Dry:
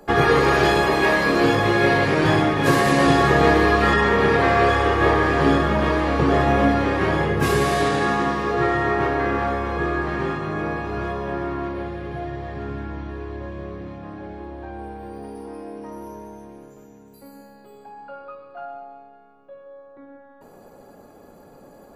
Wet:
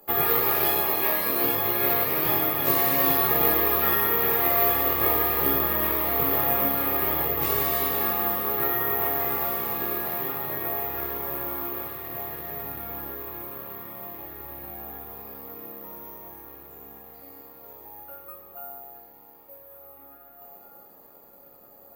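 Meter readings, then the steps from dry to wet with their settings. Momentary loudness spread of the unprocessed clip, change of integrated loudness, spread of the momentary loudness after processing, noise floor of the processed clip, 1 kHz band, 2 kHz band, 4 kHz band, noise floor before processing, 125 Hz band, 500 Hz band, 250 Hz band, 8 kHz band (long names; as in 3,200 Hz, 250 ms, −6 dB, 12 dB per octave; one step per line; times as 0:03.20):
20 LU, −3.0 dB, 19 LU, −51 dBFS, −8.0 dB, −11.0 dB, −6.5 dB, −48 dBFS, −14.5 dB, −10.0 dB, −12.5 dB, +0.5 dB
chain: low-pass filter 7,600 Hz
low-shelf EQ 410 Hz −9 dB
notch filter 1,600 Hz, Q 6.1
feedback delay with all-pass diffusion 1,928 ms, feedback 47%, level −8 dB
bad sample-rate conversion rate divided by 3×, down none, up zero stuff
level −7 dB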